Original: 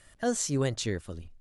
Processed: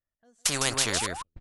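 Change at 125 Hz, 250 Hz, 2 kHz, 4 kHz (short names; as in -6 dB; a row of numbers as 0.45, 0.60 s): -6.0, -6.5, +8.5, +10.0 dB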